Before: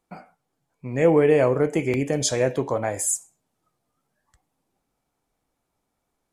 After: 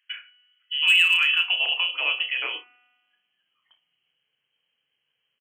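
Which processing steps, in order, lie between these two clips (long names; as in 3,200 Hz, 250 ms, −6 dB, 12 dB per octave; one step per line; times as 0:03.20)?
thirty-one-band graphic EQ 100 Hz +5 dB, 160 Hz +9 dB, 800 Hz −6 dB
in parallel at +1.5 dB: downward compressor 12 to 1, threshold −25 dBFS, peak gain reduction 14 dB
on the sum: voice inversion scrambler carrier 2,700 Hz
high-pass filter sweep 1,400 Hz → 110 Hz, 0:01.22–0:04.18
tuned comb filter 210 Hz, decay 1.6 s, mix 60%
gain into a clipping stage and back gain 12 dB
on a send: ambience of single reflections 35 ms −8.5 dB, 70 ms −16 dB
on the sum: change of speed 1.17×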